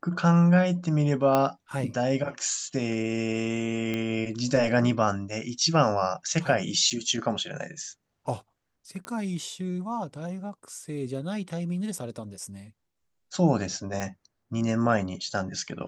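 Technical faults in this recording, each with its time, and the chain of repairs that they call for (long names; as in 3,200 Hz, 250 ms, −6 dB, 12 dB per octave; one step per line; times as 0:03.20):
0:01.35: click −10 dBFS
0:03.94: click −17 dBFS
0:06.90–0:06.91: drop-out 6.9 ms
0:09.05: click −22 dBFS
0:14.00: click −17 dBFS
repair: click removal
repair the gap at 0:06.90, 6.9 ms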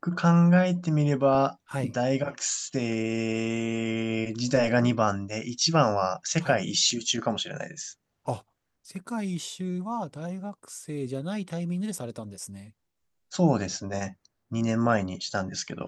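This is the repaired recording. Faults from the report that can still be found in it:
0:14.00: click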